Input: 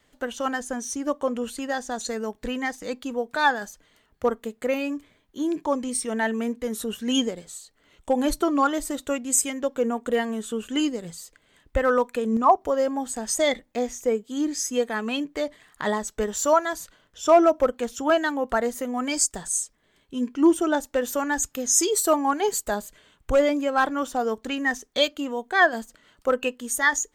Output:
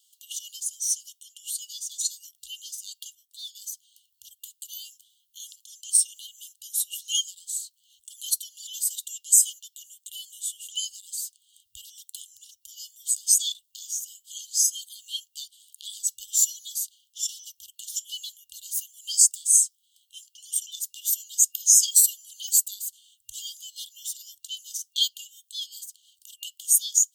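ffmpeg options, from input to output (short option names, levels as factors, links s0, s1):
-filter_complex "[0:a]asplit=3[s0][s1][s2];[s0]atrim=end=3.152[s3];[s1]atrim=start=3.148:end=3.552,asetpts=PTS-STARTPTS,volume=0.422[s4];[s2]atrim=start=3.548[s5];[s3][s4]acrossfade=d=0.004:c1=hsin:c2=hsin[s6];[s6][s5]acrossfade=d=0.004:c1=hsin:c2=hsin,afftfilt=real='re*(1-between(b*sr/4096,110,2800))':imag='im*(1-between(b*sr/4096,110,2800))':win_size=4096:overlap=0.75,aderivative,alimiter=level_in=4.22:limit=0.891:release=50:level=0:latency=1,volume=0.631"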